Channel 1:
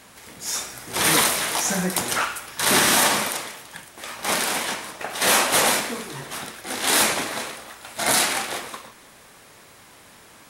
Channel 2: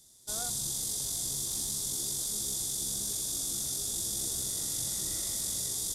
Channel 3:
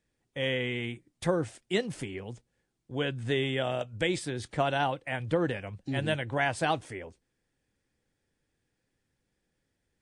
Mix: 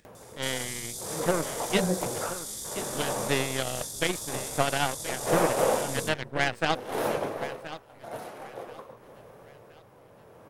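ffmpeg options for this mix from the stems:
ffmpeg -i stem1.wav -i stem2.wav -i stem3.wav -filter_complex "[0:a]equalizer=frequency=125:width_type=o:width=1:gain=9,equalizer=frequency=250:width_type=o:width=1:gain=-3,equalizer=frequency=500:width_type=o:width=1:gain=11,equalizer=frequency=2000:width_type=o:width=1:gain=-7,equalizer=frequency=4000:width_type=o:width=1:gain=-9,equalizer=frequency=8000:width_type=o:width=1:gain=-10,tremolo=f=0.55:d=0.75,highshelf=frequency=4900:gain=-8,adelay=50,volume=-6.5dB[link_01];[1:a]alimiter=level_in=3dB:limit=-24dB:level=0:latency=1,volume=-3dB,adelay=150,volume=0dB[link_02];[2:a]aeval=exprs='0.237*(cos(1*acos(clip(val(0)/0.237,-1,1)))-cos(1*PI/2))+0.0188*(cos(6*acos(clip(val(0)/0.237,-1,1)))-cos(6*PI/2))+0.0299*(cos(7*acos(clip(val(0)/0.237,-1,1)))-cos(7*PI/2))':channel_layout=same,volume=2.5dB,asplit=2[link_03][link_04];[link_04]volume=-13.5dB,aecho=0:1:1025|2050|3075|4100:1|0.24|0.0576|0.0138[link_05];[link_01][link_02][link_03][link_05]amix=inputs=4:normalize=0,acompressor=mode=upward:threshold=-42dB:ratio=2.5" out.wav

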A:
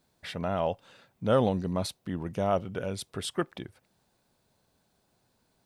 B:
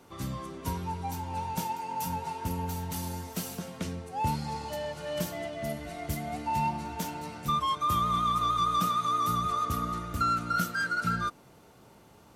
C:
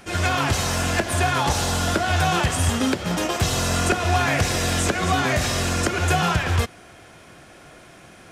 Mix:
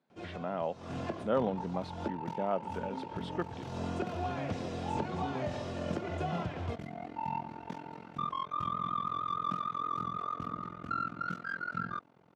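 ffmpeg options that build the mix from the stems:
ffmpeg -i stem1.wav -i stem2.wav -i stem3.wav -filter_complex "[0:a]highpass=frequency=150:width=0.5412,highpass=frequency=150:width=1.3066,volume=-5.5dB,asplit=2[link_01][link_02];[1:a]tremolo=f=43:d=1,adelay=700,volume=-3dB[link_03];[2:a]equalizer=frequency=1800:width=0.98:gain=-13,adelay=100,volume=-11dB,asplit=3[link_04][link_05][link_06];[link_04]atrim=end=2.09,asetpts=PTS-STARTPTS,afade=type=out:start_time=2.086:duration=0.004:curve=hsin[link_07];[link_05]atrim=start=2.09:end=2.63,asetpts=PTS-STARTPTS,volume=0[link_08];[link_06]atrim=start=2.63,asetpts=PTS-STARTPTS,afade=type=in:duration=0.004:curve=hsin[link_09];[link_07][link_08][link_09]concat=n=3:v=0:a=1[link_10];[link_02]apad=whole_len=370888[link_11];[link_10][link_11]sidechaincompress=threshold=-48dB:ratio=4:attack=6.4:release=188[link_12];[link_01][link_03][link_12]amix=inputs=3:normalize=0,highpass=120,lowpass=2500" out.wav

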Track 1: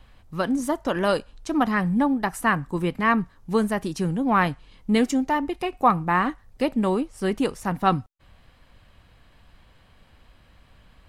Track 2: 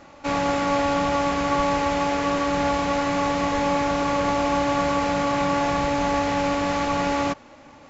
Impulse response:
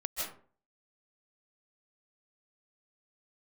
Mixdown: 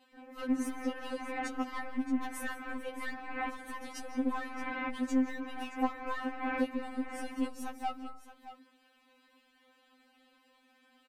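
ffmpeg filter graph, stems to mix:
-filter_complex "[0:a]highpass=frequency=47:width=0.5412,highpass=frequency=47:width=1.3066,acompressor=threshold=-26dB:ratio=12,aeval=exprs='clip(val(0),-1,0.0376)':channel_layout=same,volume=-6dB,asplit=4[link_01][link_02][link_03][link_04];[link_02]volume=-13dB[link_05];[link_03]volume=-12dB[link_06];[1:a]lowpass=frequency=2100:width=0.5412,lowpass=frequency=2100:width=1.3066,adelay=150,volume=0dB[link_07];[link_04]apad=whole_len=354773[link_08];[link_07][link_08]sidechaincompress=threshold=-51dB:ratio=4:attack=9:release=197[link_09];[2:a]atrim=start_sample=2205[link_10];[link_05][link_10]afir=irnorm=-1:irlink=0[link_11];[link_06]aecho=0:1:623:1[link_12];[link_01][link_09][link_11][link_12]amix=inputs=4:normalize=0,afftfilt=real='re*3.46*eq(mod(b,12),0)':imag='im*3.46*eq(mod(b,12),0)':win_size=2048:overlap=0.75"

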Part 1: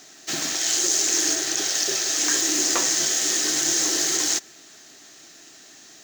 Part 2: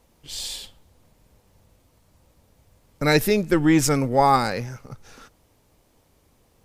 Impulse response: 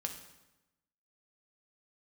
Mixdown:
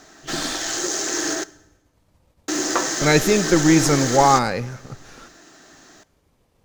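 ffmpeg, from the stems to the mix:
-filter_complex "[0:a]highshelf=frequency=1900:width_type=q:width=1.5:gain=-6,volume=3dB,asplit=3[link_01][link_02][link_03];[link_01]atrim=end=1.44,asetpts=PTS-STARTPTS,afade=type=out:start_time=1.436:duration=0.004:curve=hsin[link_04];[link_02]atrim=start=1.44:end=2.48,asetpts=PTS-STARTPTS,volume=0[link_05];[link_03]atrim=start=2.48,asetpts=PTS-STARTPTS,afade=type=in:duration=0.004:curve=hsin[link_06];[link_04][link_05][link_06]concat=n=3:v=0:a=1,asplit=2[link_07][link_08];[link_08]volume=-10.5dB[link_09];[1:a]agate=range=-33dB:threshold=-49dB:ratio=3:detection=peak,acompressor=mode=upward:threshold=-53dB:ratio=2.5,volume=1dB,asplit=2[link_10][link_11];[link_11]volume=-12.5dB[link_12];[2:a]atrim=start_sample=2205[link_13];[link_09][link_12]amix=inputs=2:normalize=0[link_14];[link_14][link_13]afir=irnorm=-1:irlink=0[link_15];[link_07][link_10][link_15]amix=inputs=3:normalize=0,highshelf=frequency=7300:gain=-8"

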